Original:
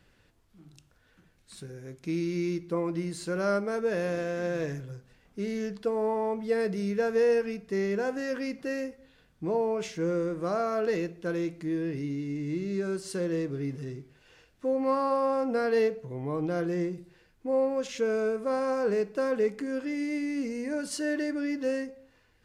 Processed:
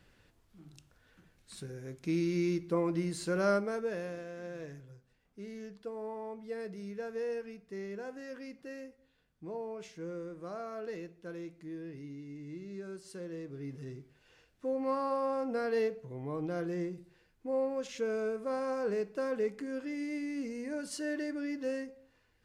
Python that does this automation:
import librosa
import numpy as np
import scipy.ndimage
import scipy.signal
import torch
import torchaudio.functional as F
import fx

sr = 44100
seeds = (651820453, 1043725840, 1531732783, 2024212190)

y = fx.gain(x, sr, db=fx.line((3.49, -1.0), (4.24, -12.5), (13.4, -12.5), (13.88, -6.0)))